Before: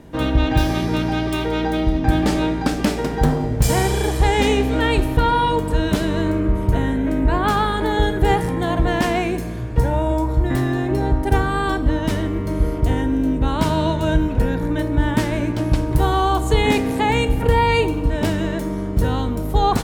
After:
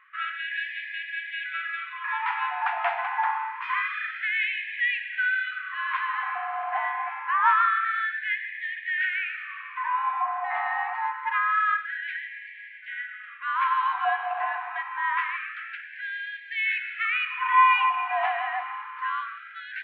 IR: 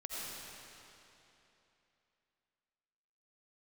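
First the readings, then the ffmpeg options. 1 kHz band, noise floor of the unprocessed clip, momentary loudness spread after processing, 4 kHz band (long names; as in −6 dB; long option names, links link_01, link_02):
−2.5 dB, −24 dBFS, 12 LU, −10.0 dB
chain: -filter_complex "[0:a]highpass=frequency=370:width_type=q:width=0.5412,highpass=frequency=370:width_type=q:width=1.307,lowpass=frequency=2400:width_type=q:width=0.5176,lowpass=frequency=2400:width_type=q:width=0.7071,lowpass=frequency=2400:width_type=q:width=1.932,afreqshift=100,asplit=2[link_01][link_02];[1:a]atrim=start_sample=2205[link_03];[link_02][link_03]afir=irnorm=-1:irlink=0,volume=-6.5dB[link_04];[link_01][link_04]amix=inputs=2:normalize=0,afftfilt=real='re*gte(b*sr/1024,680*pow(1600/680,0.5+0.5*sin(2*PI*0.26*pts/sr)))':imag='im*gte(b*sr/1024,680*pow(1600/680,0.5+0.5*sin(2*PI*0.26*pts/sr)))':win_size=1024:overlap=0.75"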